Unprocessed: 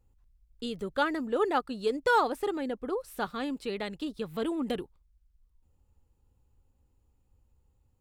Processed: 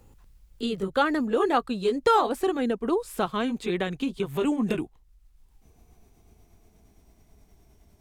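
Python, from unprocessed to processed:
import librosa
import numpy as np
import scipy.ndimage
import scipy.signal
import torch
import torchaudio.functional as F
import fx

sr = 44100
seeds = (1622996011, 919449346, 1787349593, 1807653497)

y = fx.pitch_glide(x, sr, semitones=-4.0, runs='starting unshifted')
y = fx.band_squash(y, sr, depth_pct=40)
y = y * librosa.db_to_amplitude(7.0)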